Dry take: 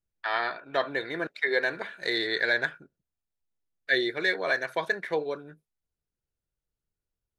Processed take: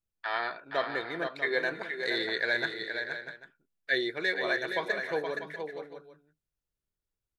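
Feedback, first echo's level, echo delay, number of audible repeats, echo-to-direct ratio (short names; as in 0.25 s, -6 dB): no steady repeat, -6.5 dB, 0.47 s, 3, -5.5 dB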